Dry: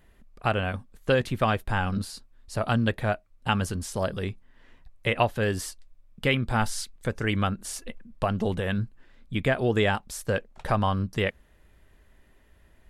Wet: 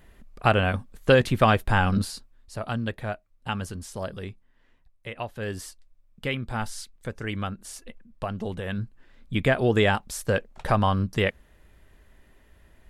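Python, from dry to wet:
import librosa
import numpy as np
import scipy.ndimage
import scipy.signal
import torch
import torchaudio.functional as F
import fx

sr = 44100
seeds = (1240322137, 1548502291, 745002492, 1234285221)

y = fx.gain(x, sr, db=fx.line((2.03, 5.0), (2.57, -5.0), (4.19, -5.0), (5.15, -12.0), (5.51, -5.0), (8.52, -5.0), (9.34, 2.5)))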